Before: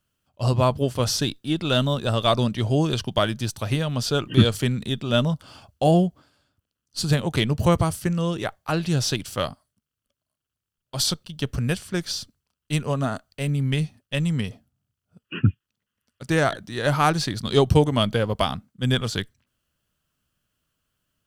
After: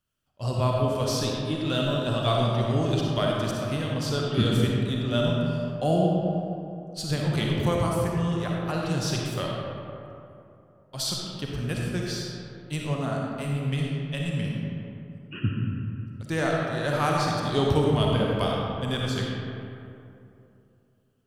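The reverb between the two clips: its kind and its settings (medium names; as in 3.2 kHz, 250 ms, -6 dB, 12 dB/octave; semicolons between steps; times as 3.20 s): algorithmic reverb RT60 2.8 s, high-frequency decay 0.45×, pre-delay 15 ms, DRR -2.5 dB; trim -7.5 dB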